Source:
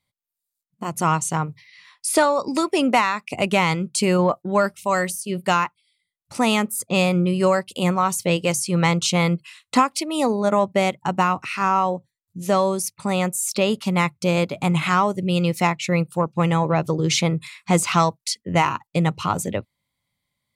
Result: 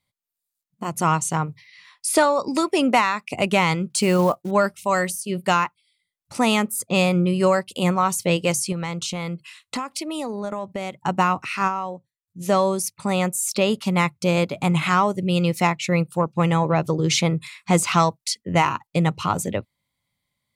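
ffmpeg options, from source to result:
ffmpeg -i in.wav -filter_complex "[0:a]asettb=1/sr,asplit=3[link_01][link_02][link_03];[link_01]atrim=end=3.904[link_04];[link_02]atrim=start=3.9:end=4.51,asetpts=PTS-STARTPTS,afade=type=in:duration=0.004:curve=qsin,afade=type=out:start_time=0.606:duration=0.004:curve=qsin,acrusher=bits=6:mode=log:mix=0:aa=0.000001[link_05];[link_03]atrim=start=4.506[link_06];[link_04][link_05]acrossfade=duration=0.004:curve1=hsin:curve2=qsin[link_07];[link_07][link_06]acrossfade=duration=0.004:curve1=qsin:curve2=hsin,asettb=1/sr,asplit=3[link_08][link_09][link_10];[link_08]atrim=end=8.724[link_11];[link_09]atrim=start=8.72:end=11.01,asetpts=PTS-STARTPTS,afade=type=in:duration=0.004:curve=qsin,afade=type=out:start_time=2.286:duration=0.004:curve=qsin,acompressor=threshold=-25dB:ratio=5:attack=3.2:release=140:knee=1:detection=peak[link_12];[link_10]atrim=start=11.006[link_13];[link_11][link_12]acrossfade=duration=0.004:curve1=hsin:curve2=qsin[link_14];[link_14][link_13]acrossfade=duration=0.004:curve1=qsin:curve2=hsin,asplit=3[link_15][link_16][link_17];[link_15]atrim=end=11.92,asetpts=PTS-STARTPTS,afade=type=out:start_time=11.67:duration=0.25:curve=exp:silence=0.375837[link_18];[link_16]atrim=start=11.92:end=12.16,asetpts=PTS-STARTPTS,volume=-8.5dB[link_19];[link_17]atrim=start=12.16,asetpts=PTS-STARTPTS,afade=type=in:duration=0.25:curve=exp:silence=0.375837[link_20];[link_18][link_19][link_20]concat=n=3:v=0:a=1" out.wav

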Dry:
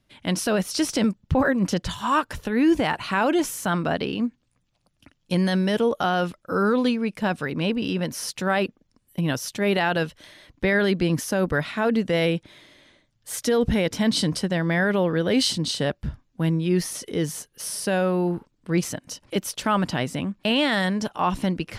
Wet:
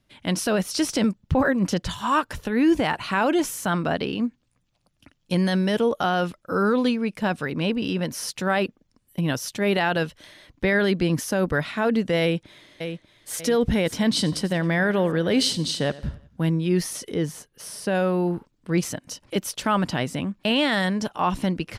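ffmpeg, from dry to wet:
ffmpeg -i in.wav -filter_complex "[0:a]asplit=2[link_01][link_02];[link_02]afade=type=in:start_time=12.21:duration=0.01,afade=type=out:start_time=13.34:duration=0.01,aecho=0:1:590|1180|1770|2360:0.375837|0.150335|0.060134|0.0240536[link_03];[link_01][link_03]amix=inputs=2:normalize=0,asettb=1/sr,asplit=3[link_04][link_05][link_06];[link_04]atrim=end=14.094[link_07];[link_05]atrim=start=14.09:end=16.49,asetpts=PTS-STARTPTS,afade=type=in:duration=0.004:curve=qsin,afade=type=out:start_time=2.396:duration=0.004:curve=qsin,aecho=1:1:91|182|273|364:0.119|0.057|0.0274|0.0131,atrim=end_sample=105840[link_08];[link_06]atrim=start=16.486[link_09];[link_07][link_08]acrossfade=duration=0.004:curve1=hsin:curve2=qsin[link_10];[link_10][link_09]acrossfade=duration=0.004:curve1=qsin:curve2=hsin,asettb=1/sr,asplit=3[link_11][link_12][link_13];[link_11]atrim=end=17.144[link_14];[link_12]atrim=start=17.14:end=17.95,asetpts=PTS-STARTPTS,afade=type=in:duration=0.004:curve=qsin,afade=type=out:start_time=0.806:duration=0.004:curve=qsin,highshelf=frequency=3200:gain=-7.5[link_15];[link_13]atrim=start=17.946[link_16];[link_14][link_15]acrossfade=duration=0.004:curve1=hsin:curve2=qsin[link_17];[link_17][link_16]acrossfade=duration=0.004:curve1=qsin:curve2=hsin" out.wav

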